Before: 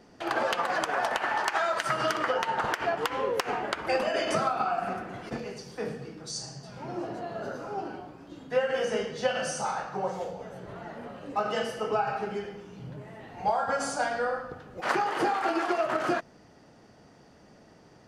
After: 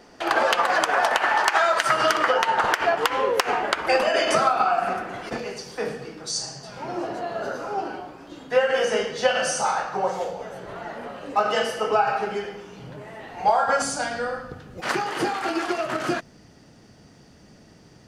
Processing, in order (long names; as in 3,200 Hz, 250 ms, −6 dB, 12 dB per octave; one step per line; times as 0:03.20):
parametric band 120 Hz −9 dB 2.8 octaves, from 0:13.82 790 Hz
level +8.5 dB